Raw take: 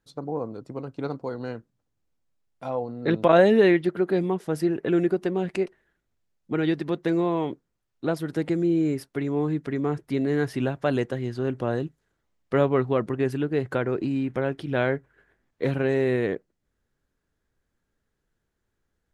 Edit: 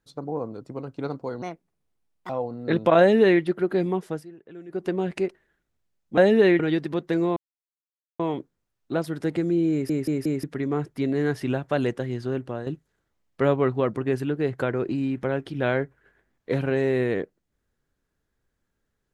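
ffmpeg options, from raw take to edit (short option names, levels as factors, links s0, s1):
-filter_complex "[0:a]asplit=13[s0][s1][s2][s3][s4][s5][s6][s7][s8][s9][s10][s11][s12];[s0]atrim=end=1.424[s13];[s1]atrim=start=1.42:end=2.67,asetpts=PTS-STARTPTS,asetrate=63063,aresample=44100[s14];[s2]atrim=start=2.666:end=4.63,asetpts=PTS-STARTPTS,afade=t=out:st=1.784:d=0.18:silence=0.1[s15];[s3]atrim=start=4.63:end=5.06,asetpts=PTS-STARTPTS,volume=0.1[s16];[s4]atrim=start=5.06:end=6.552,asetpts=PTS-STARTPTS,afade=t=in:d=0.18:silence=0.1[s17];[s5]atrim=start=3.368:end=3.792[s18];[s6]atrim=start=6.548:end=7.32,asetpts=PTS-STARTPTS,afade=t=out:st=0.768:d=0.004:c=hsin,apad=pad_dur=0.83[s19];[s7]atrim=start=7.32:end=9.022,asetpts=PTS-STARTPTS,afade=t=in:d=0.004:c=hsin[s20];[s8]atrim=start=8.838:end=9.022[s21];[s9]atrim=start=8.838:end=9.022[s22];[s10]atrim=start=8.838:end=9.022[s23];[s11]atrim=start=9.558:end=11.79,asetpts=PTS-STARTPTS,afade=t=out:st=1.842:d=0.39:silence=0.334965[s24];[s12]atrim=start=11.79,asetpts=PTS-STARTPTS,afade=t=in:d=0.004:c=hsin:silence=0.334965[s25];[s13][s14]acrossfade=d=0.004:c1=hsin:c2=hsin[s26];[s15][s16][s17]concat=n=3:v=0:a=1[s27];[s26][s27]acrossfade=d=0.004:c1=hsin:c2=hsin[s28];[s28][s18]acrossfade=d=0.004:c1=hsin:c2=hsin[s29];[s19][s20]concat=n=2:v=0:a=1[s30];[s29][s30]acrossfade=d=0.004:c1=hsin:c2=hsin[s31];[s31][s21]acrossfade=d=0.004:c1=hsin:c2=hsin[s32];[s32][s22]acrossfade=d=0.004:c1=hsin:c2=hsin[s33];[s33][s23]acrossfade=d=0.004:c1=hsin:c2=hsin[s34];[s24][s25]concat=n=2:v=0:a=1[s35];[s34][s35]acrossfade=d=0.004:c1=hsin:c2=hsin"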